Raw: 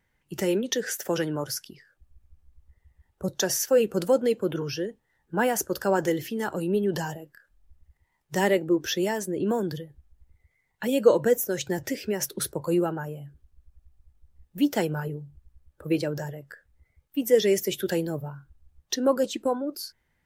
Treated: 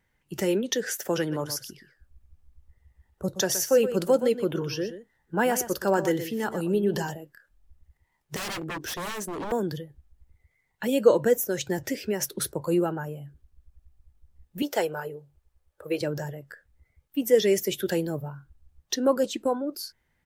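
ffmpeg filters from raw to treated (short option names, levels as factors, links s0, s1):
-filter_complex "[0:a]asplit=3[s0][s1][s2];[s0]afade=t=out:st=1.31:d=0.02[s3];[s1]aecho=1:1:122:0.266,afade=t=in:st=1.31:d=0.02,afade=t=out:st=7.1:d=0.02[s4];[s2]afade=t=in:st=7.1:d=0.02[s5];[s3][s4][s5]amix=inputs=3:normalize=0,asettb=1/sr,asplit=3[s6][s7][s8];[s6]atrim=end=8.364[s9];[s7]atrim=start=8.36:end=9.52,asetpts=PTS-STARTPTS,afade=t=in:d=0.004:c=qsin,afade=t=out:st=1.156:d=0.004:c=qsin,aeval=exprs='0.0398*(abs(mod(val(0)/0.0398+3,4)-2)-1)':c=same[s10];[s8]atrim=start=9.516[s11];[s9][s10]acrossfade=d=0.004:c1=hsin:c2=qsin[s12];[s12][s11]acrossfade=d=0.004:c1=qsin:c2=hsin,asettb=1/sr,asplit=3[s13][s14][s15];[s13]atrim=end=14.624[s16];[s14]atrim=start=14.62:end=16.01,asetpts=PTS-STARTPTS,afade=t=in:d=0.004:c=qsin,afade=t=out:st=1.386:d=0.004:c=qsin,lowshelf=f=340:t=q:w=1.5:g=-10.5[s17];[s15]atrim=start=16.006[s18];[s16][s17]acrossfade=d=0.004:c1=hsin:c2=qsin[s19];[s19][s18]acrossfade=d=0.004:c1=qsin:c2=hsin"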